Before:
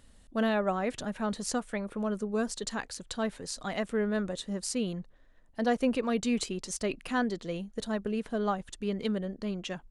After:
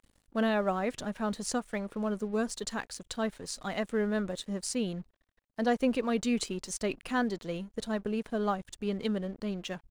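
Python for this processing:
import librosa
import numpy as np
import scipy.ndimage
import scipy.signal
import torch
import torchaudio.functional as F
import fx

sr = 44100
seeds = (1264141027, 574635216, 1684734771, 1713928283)

y = np.sign(x) * np.maximum(np.abs(x) - 10.0 ** (-55.0 / 20.0), 0.0)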